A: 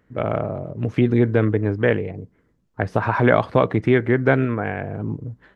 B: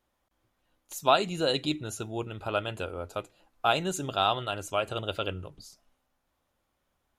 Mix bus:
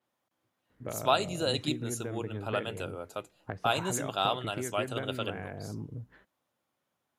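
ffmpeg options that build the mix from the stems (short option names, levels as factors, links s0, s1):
-filter_complex "[0:a]acompressor=threshold=0.0447:ratio=6,adelay=700,volume=0.422[s0];[1:a]highpass=f=110:w=0.5412,highpass=f=110:w=1.3066,adynamicequalizer=threshold=0.00562:dfrequency=5800:dqfactor=0.7:tfrequency=5800:tqfactor=0.7:attack=5:release=100:ratio=0.375:range=4:mode=boostabove:tftype=highshelf,volume=0.668[s1];[s0][s1]amix=inputs=2:normalize=0"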